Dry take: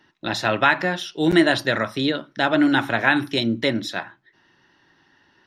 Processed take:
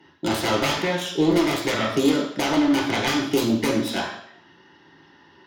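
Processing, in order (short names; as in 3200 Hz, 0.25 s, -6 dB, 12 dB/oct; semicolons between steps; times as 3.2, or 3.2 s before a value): self-modulated delay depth 0.5 ms; low shelf 64 Hz -10 dB; one-sided clip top -20 dBFS; compressor, threshold -25 dBFS, peak gain reduction 11.5 dB; reverb RT60 0.70 s, pre-delay 3 ms, DRR -1.5 dB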